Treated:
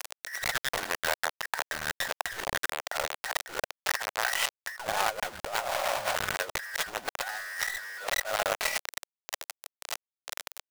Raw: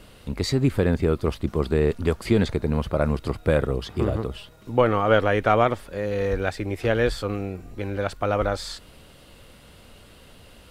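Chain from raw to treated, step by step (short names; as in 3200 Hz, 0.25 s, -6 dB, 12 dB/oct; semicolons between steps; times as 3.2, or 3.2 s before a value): band inversion scrambler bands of 2000 Hz; painted sound noise, 5.59–6.16, 530–5700 Hz -17 dBFS; treble ducked by the level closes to 310 Hz, closed at -19 dBFS; LPF 7200 Hz 12 dB/oct; companded quantiser 2-bit; negative-ratio compressor -34 dBFS, ratio -0.5; resonant low shelf 420 Hz -12 dB, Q 1.5; gain +3.5 dB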